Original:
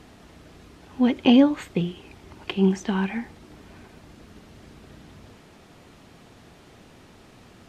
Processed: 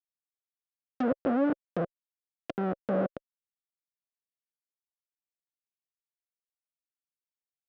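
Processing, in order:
adaptive Wiener filter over 9 samples
comparator with hysteresis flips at −21.5 dBFS
tilt shelving filter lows +8 dB, about 1,100 Hz
treble cut that deepens with the level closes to 1,700 Hz, closed at −20 dBFS
loudspeaker in its box 370–5,500 Hz, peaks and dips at 380 Hz −4 dB, 550 Hz +8 dB, 920 Hz −10 dB, 1,400 Hz +4 dB, 2,200 Hz −4 dB, 4,300 Hz −5 dB
level +1.5 dB

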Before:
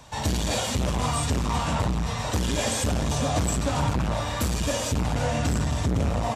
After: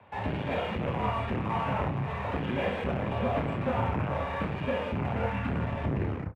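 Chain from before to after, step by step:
turntable brake at the end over 0.44 s
gain on a spectral selection 0:05.26–0:05.49, 380–770 Hz −12 dB
elliptic band-pass filter 120–2,500 Hz, stop band 40 dB
in parallel at −6 dB: dead-zone distortion −43.5 dBFS
on the sum: frequency shifter −33 Hz
on a send: ambience of single reflections 29 ms −7 dB, 66 ms −16.5 dB
on the sum: level −5.5 dB

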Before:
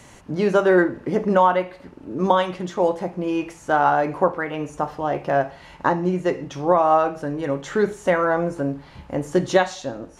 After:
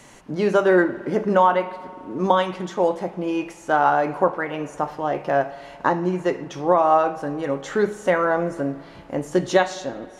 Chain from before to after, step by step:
parametric band 74 Hz −11.5 dB 1.2 octaves
spring reverb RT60 2.5 s, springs 53 ms, chirp 25 ms, DRR 16.5 dB

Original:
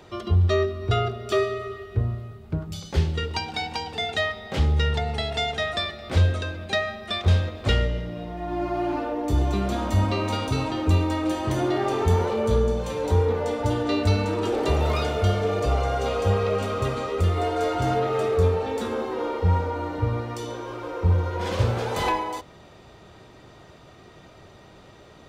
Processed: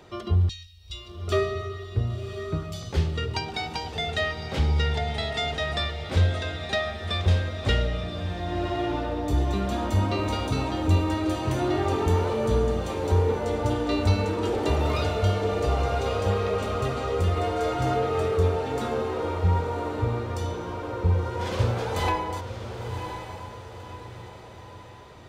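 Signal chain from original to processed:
0:00.49–0:01.28: inverse Chebyshev band-stop filter 240–780 Hz, stop band 80 dB
feedback delay with all-pass diffusion 1,057 ms, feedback 45%, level −8.5 dB
level −2 dB

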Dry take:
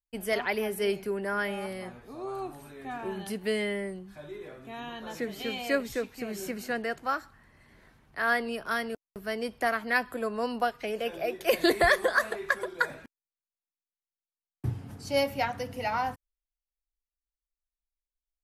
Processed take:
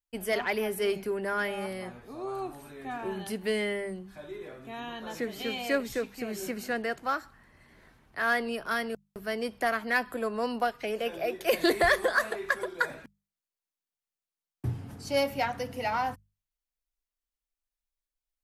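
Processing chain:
mains-hum notches 50/100/150/200 Hz
in parallel at −8.5 dB: gain into a clipping stage and back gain 28 dB
on the sum: level −2 dB

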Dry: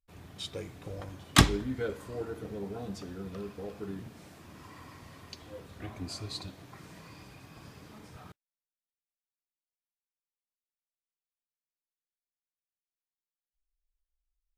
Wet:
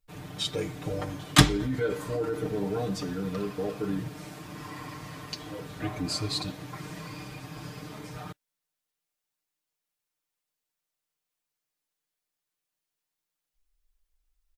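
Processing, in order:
comb filter 6.6 ms, depth 91%
in parallel at −3 dB: compressor whose output falls as the input rises −35 dBFS, ratio −0.5

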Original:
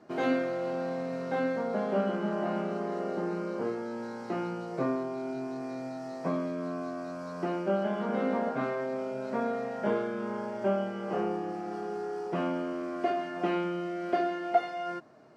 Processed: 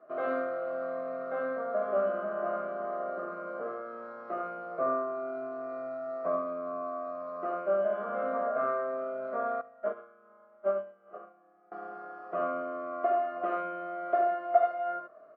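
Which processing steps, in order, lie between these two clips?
pair of resonant band-passes 880 Hz, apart 0.89 octaves
high-frequency loss of the air 160 metres
ambience of single reflections 54 ms −10.5 dB, 76 ms −5.5 dB
0:09.61–0:11.72: expander for the loud parts 2.5 to 1, over −46 dBFS
level +7.5 dB

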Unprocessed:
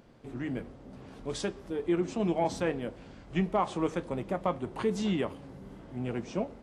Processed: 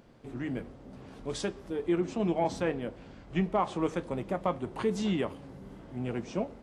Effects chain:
0:01.98–0:03.83: high-shelf EQ 6,500 Hz −5.5 dB

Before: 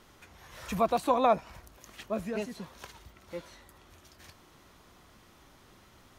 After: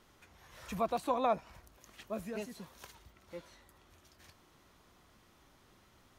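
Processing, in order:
0:02.06–0:02.95: high-shelf EQ 8,000 Hz +8.5 dB
level −6.5 dB

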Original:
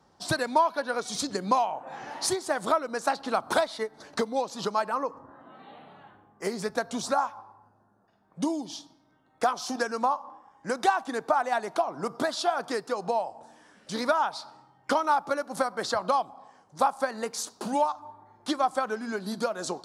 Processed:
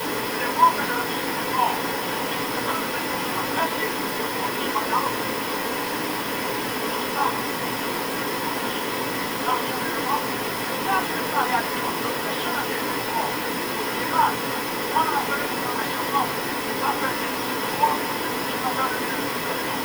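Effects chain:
high-pass filter 810 Hz 24 dB per octave
volume swells 102 ms
transistor ladder low-pass 3,200 Hz, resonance 75%
bit-depth reduction 6 bits, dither triangular
convolution reverb RT60 0.25 s, pre-delay 3 ms, DRR −4.5 dB

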